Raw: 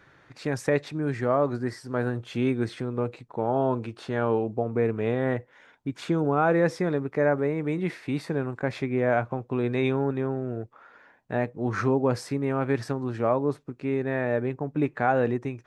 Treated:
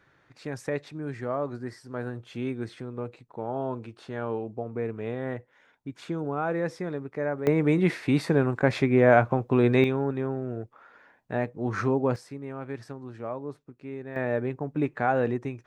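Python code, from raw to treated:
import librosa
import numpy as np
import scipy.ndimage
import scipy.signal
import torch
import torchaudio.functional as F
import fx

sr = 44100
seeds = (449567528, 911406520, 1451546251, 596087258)

y = fx.gain(x, sr, db=fx.steps((0.0, -6.5), (7.47, 5.5), (9.84, -1.5), (12.16, -10.5), (14.16, -1.5)))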